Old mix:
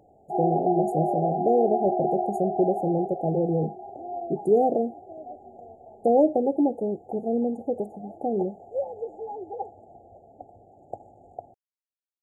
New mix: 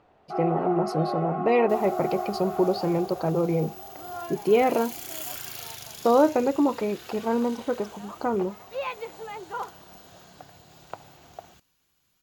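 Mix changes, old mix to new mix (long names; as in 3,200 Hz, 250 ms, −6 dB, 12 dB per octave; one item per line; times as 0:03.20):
first sound −4.0 dB
second sound: unmuted
master: remove linear-phase brick-wall band-stop 860–6,700 Hz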